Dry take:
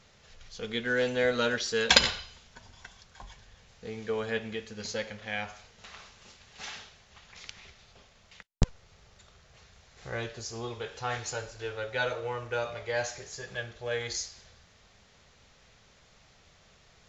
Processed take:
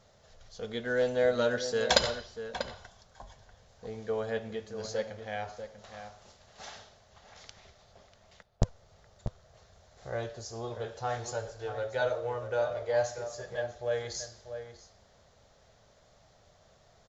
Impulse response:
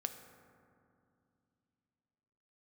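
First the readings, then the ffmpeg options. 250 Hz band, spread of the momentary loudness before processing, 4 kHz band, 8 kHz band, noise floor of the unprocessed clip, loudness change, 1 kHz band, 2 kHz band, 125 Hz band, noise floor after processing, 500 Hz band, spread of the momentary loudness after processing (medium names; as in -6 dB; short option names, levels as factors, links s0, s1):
-2.5 dB, 22 LU, -6.0 dB, no reading, -61 dBFS, -2.0 dB, 0.0 dB, -5.5 dB, -1.0 dB, -63 dBFS, +2.5 dB, 21 LU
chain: -filter_complex "[0:a]equalizer=f=100:t=o:w=0.67:g=4,equalizer=f=630:t=o:w=0.67:g=10,equalizer=f=2500:t=o:w=0.67:g=-8,asplit=2[s0][s1];[s1]adelay=641.4,volume=0.355,highshelf=f=4000:g=-14.4[s2];[s0][s2]amix=inputs=2:normalize=0,volume=0.631"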